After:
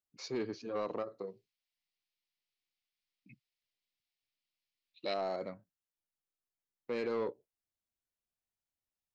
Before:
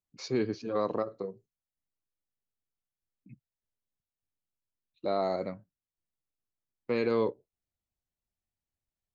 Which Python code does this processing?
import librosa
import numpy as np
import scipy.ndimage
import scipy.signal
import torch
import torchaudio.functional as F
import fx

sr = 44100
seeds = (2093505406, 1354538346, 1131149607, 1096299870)

y = fx.low_shelf(x, sr, hz=200.0, db=-8.0)
y = 10.0 ** (-24.5 / 20.0) * np.tanh(y / 10.0 ** (-24.5 / 20.0))
y = fx.band_shelf(y, sr, hz=3200.0, db=13.0, octaves=1.7, at=(1.27, 5.14))
y = y * librosa.db_to_amplitude(-3.5)